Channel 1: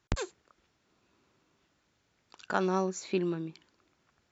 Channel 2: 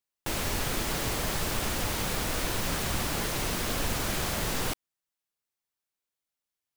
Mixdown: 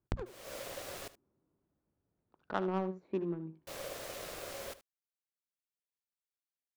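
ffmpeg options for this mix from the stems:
-filter_complex "[0:a]bandreject=f=60:t=h:w=6,bandreject=f=120:t=h:w=6,bandreject=f=180:t=h:w=6,bandreject=f=240:t=h:w=6,adynamicsmooth=sensitivity=1:basefreq=650,volume=0.596,asplit=3[s0][s1][s2];[s1]volume=0.211[s3];[1:a]equalizer=f=330:t=o:w=0.41:g=-13.5,aeval=exprs='val(0)*sin(2*PI*550*n/s)':c=same,volume=0.282,asplit=3[s4][s5][s6];[s4]atrim=end=1.08,asetpts=PTS-STARTPTS,afade=t=out:st=1.076:d=0.004:c=hsin[s7];[s5]atrim=start=1.08:end=3.67,asetpts=PTS-STARTPTS,volume=0[s8];[s6]atrim=start=3.67,asetpts=PTS-STARTPTS,afade=t=in:d=0.004:c=hsin[s9];[s7][s8][s9]concat=n=3:v=0:a=1,asplit=2[s10][s11];[s11]volume=0.158[s12];[s2]apad=whole_len=298306[s13];[s10][s13]sidechaincompress=threshold=0.00178:ratio=5:attack=9:release=221[s14];[s3][s12]amix=inputs=2:normalize=0,aecho=0:1:75:1[s15];[s0][s14][s15]amix=inputs=3:normalize=0"

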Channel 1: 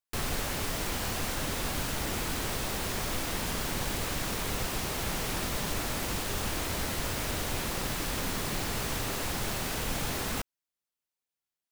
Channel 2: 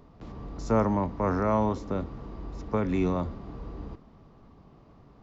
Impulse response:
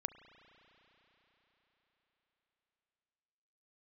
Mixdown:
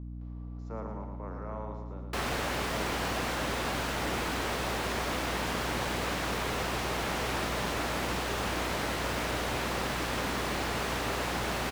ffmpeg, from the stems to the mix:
-filter_complex "[0:a]acontrast=61,adelay=2000,volume=0.944[s0];[1:a]volume=0.2,asplit=2[s1][s2];[s2]volume=0.562,aecho=0:1:113|226|339|452|565|678|791:1|0.51|0.26|0.133|0.0677|0.0345|0.0176[s3];[s0][s1][s3]amix=inputs=3:normalize=0,highpass=f=380:p=1,aeval=exprs='val(0)+0.0112*(sin(2*PI*60*n/s)+sin(2*PI*2*60*n/s)/2+sin(2*PI*3*60*n/s)/3+sin(2*PI*4*60*n/s)/4+sin(2*PI*5*60*n/s)/5)':c=same,lowpass=f=2100:p=1"

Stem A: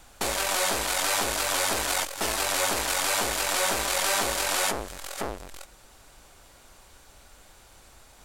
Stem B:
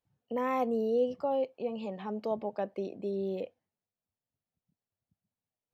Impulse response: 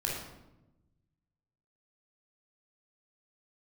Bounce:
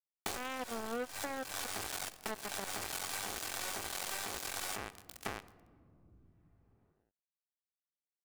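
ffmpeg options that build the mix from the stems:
-filter_complex "[0:a]aecho=1:1:2.6:0.4,alimiter=limit=0.133:level=0:latency=1:release=101,acrusher=bits=3:mix=0:aa=0.5,adelay=50,volume=0.631,asplit=2[s0][s1];[s1]volume=0.0841[s2];[1:a]acrusher=bits=3:mix=0:aa=0.5,volume=0.891,asplit=2[s3][s4];[s4]apad=whole_len=366024[s5];[s0][s5]sidechaincompress=threshold=0.00631:ratio=4:attack=22:release=205[s6];[2:a]atrim=start_sample=2205[s7];[s2][s7]afir=irnorm=-1:irlink=0[s8];[s6][s3][s8]amix=inputs=3:normalize=0,acompressor=mode=upward:threshold=0.00891:ratio=2.5,asoftclip=type=hard:threshold=0.0944,acompressor=threshold=0.02:ratio=6"

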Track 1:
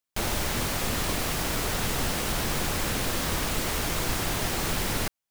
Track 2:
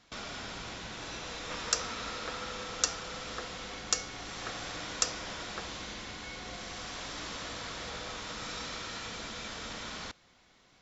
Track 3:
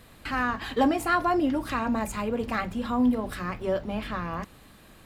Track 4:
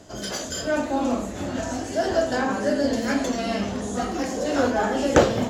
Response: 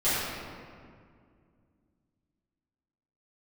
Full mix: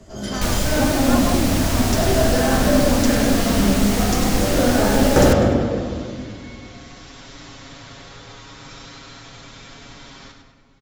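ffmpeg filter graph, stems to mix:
-filter_complex "[0:a]equalizer=f=5900:t=o:w=1.2:g=4,adelay=250,volume=1.26,asplit=2[s0][s1];[s1]volume=0.0668[s2];[1:a]aecho=1:1:7.3:0.69,adelay=200,volume=0.562,asplit=3[s3][s4][s5];[s4]volume=0.112[s6];[s5]volume=0.473[s7];[2:a]lowpass=1500,volume=0.631[s8];[3:a]volume=0.398,asplit=2[s9][s10];[s10]volume=0.562[s11];[4:a]atrim=start_sample=2205[s12];[s6][s11]amix=inputs=2:normalize=0[s13];[s13][s12]afir=irnorm=-1:irlink=0[s14];[s2][s7]amix=inputs=2:normalize=0,aecho=0:1:100|200|300|400|500|600:1|0.42|0.176|0.0741|0.0311|0.0131[s15];[s0][s3][s8][s9][s14][s15]amix=inputs=6:normalize=0,lowshelf=f=210:g=8.5"

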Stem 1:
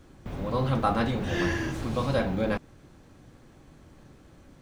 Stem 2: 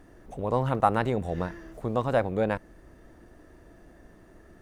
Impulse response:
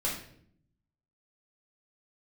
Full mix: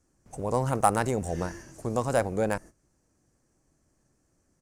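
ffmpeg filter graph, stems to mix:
-filter_complex "[0:a]volume=0.112[s0];[1:a]agate=range=0.0562:threshold=0.00794:ratio=16:detection=peak,adelay=4.7,volume=0.944[s1];[s0][s1]amix=inputs=2:normalize=0,aexciter=amount=9.8:drive=9.5:freq=5600,adynamicsmooth=sensitivity=2:basefreq=4900"

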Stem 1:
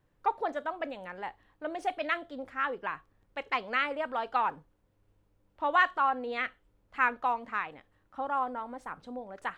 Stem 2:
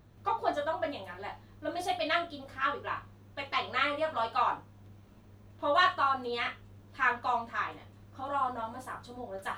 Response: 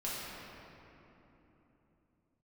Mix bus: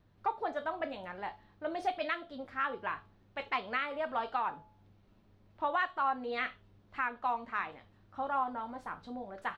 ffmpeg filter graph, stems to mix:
-filter_complex "[0:a]highshelf=f=4700:g=-8.5,bandreject=f=500:w=12,bandreject=f=214.2:t=h:w=4,bandreject=f=428.4:t=h:w=4,bandreject=f=642.6:t=h:w=4,bandreject=f=856.8:t=h:w=4,volume=0.891[s0];[1:a]highshelf=f=6200:t=q:w=1.5:g=-9.5,acompressor=threshold=0.0355:ratio=6,adelay=1.8,volume=0.335[s1];[s0][s1]amix=inputs=2:normalize=0,alimiter=limit=0.0841:level=0:latency=1:release=440"

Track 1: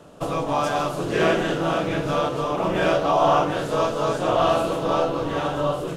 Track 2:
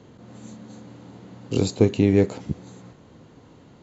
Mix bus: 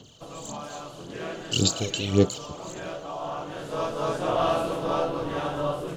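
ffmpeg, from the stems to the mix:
-filter_complex "[0:a]volume=0.596,afade=t=in:st=3.38:d=0.69:silence=0.281838[s0];[1:a]aexciter=amount=7.3:drive=5.3:freq=3000,aphaser=in_gain=1:out_gain=1:delay=2.3:decay=0.75:speed=1.8:type=sinusoidal,equalizer=f=3000:w=6:g=12.5,volume=0.266[s1];[s0][s1]amix=inputs=2:normalize=0"

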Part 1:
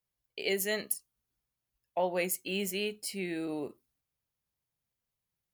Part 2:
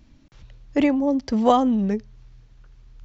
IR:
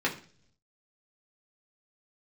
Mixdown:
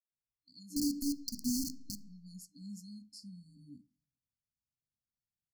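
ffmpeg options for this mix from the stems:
-filter_complex "[0:a]lowpass=5400,dynaudnorm=f=240:g=5:m=1.88,adelay=100,volume=0.224,asplit=2[s0][s1];[s1]volume=0.0668[s2];[1:a]tiltshelf=f=970:g=-9,aeval=exprs='val(0)*gte(abs(val(0)),0.0794)':c=same,volume=1.33,asplit=2[s3][s4];[s4]volume=0.158[s5];[2:a]atrim=start_sample=2205[s6];[s2][s5]amix=inputs=2:normalize=0[s7];[s7][s6]afir=irnorm=-1:irlink=0[s8];[s0][s3][s8]amix=inputs=3:normalize=0,afftfilt=real='re*(1-between(b*sr/4096,300,4200))':imag='im*(1-between(b*sr/4096,300,4200))':win_size=4096:overlap=0.75,alimiter=limit=0.0668:level=0:latency=1:release=105"

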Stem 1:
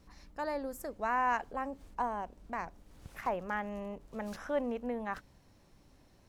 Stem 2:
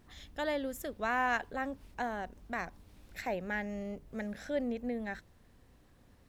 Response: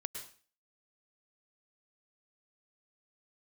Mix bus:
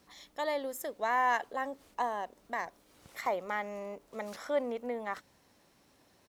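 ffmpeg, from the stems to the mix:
-filter_complex "[0:a]volume=1.19[s0];[1:a]highshelf=f=2400:g=10,volume=-1,adelay=0.6,volume=0.422[s1];[s0][s1]amix=inputs=2:normalize=0,highpass=f=360:p=1"

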